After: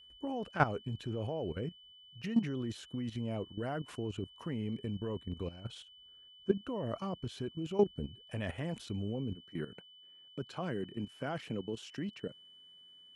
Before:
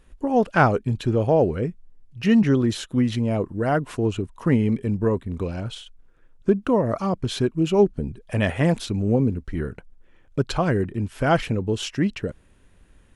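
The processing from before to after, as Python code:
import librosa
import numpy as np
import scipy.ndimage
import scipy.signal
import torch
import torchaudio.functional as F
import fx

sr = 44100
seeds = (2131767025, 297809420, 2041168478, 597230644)

y = fx.highpass(x, sr, hz=fx.steps((0.0, 43.0), (9.35, 130.0)), slope=24)
y = fx.level_steps(y, sr, step_db=14)
y = y + 10.0 ** (-47.0 / 20.0) * np.sin(2.0 * np.pi * 3000.0 * np.arange(len(y)) / sr)
y = y * 10.0 ** (-8.5 / 20.0)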